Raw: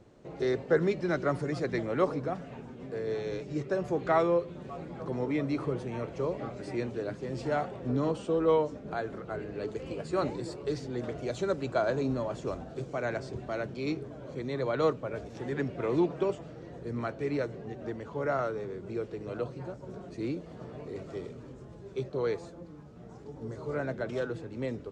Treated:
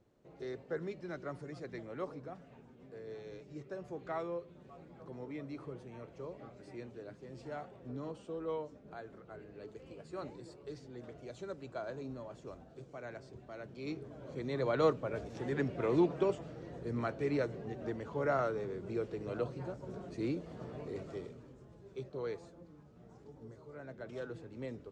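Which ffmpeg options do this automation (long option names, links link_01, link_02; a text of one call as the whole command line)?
ffmpeg -i in.wav -af "volume=7dB,afade=type=in:start_time=13.57:duration=1.13:silence=0.266073,afade=type=out:start_time=20.91:duration=0.57:silence=0.446684,afade=type=out:start_time=23.26:duration=0.46:silence=0.375837,afade=type=in:start_time=23.72:duration=0.63:silence=0.354813" out.wav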